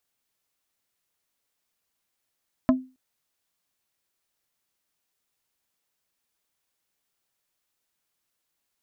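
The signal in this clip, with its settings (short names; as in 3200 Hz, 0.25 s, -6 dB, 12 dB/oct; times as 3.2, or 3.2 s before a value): wood hit plate, length 0.27 s, lowest mode 258 Hz, decay 0.30 s, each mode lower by 5 dB, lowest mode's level -12.5 dB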